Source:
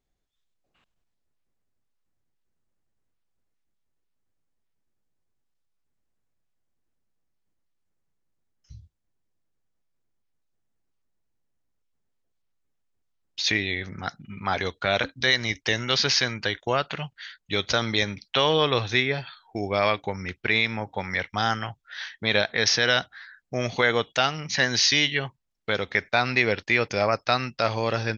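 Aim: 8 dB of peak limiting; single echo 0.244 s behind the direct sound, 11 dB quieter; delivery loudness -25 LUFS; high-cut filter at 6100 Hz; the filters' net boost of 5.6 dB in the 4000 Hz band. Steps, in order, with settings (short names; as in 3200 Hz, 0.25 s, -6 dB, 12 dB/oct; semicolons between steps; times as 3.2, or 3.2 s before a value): LPF 6100 Hz; bell 4000 Hz +7.5 dB; limiter -10.5 dBFS; echo 0.244 s -11 dB; gain -1 dB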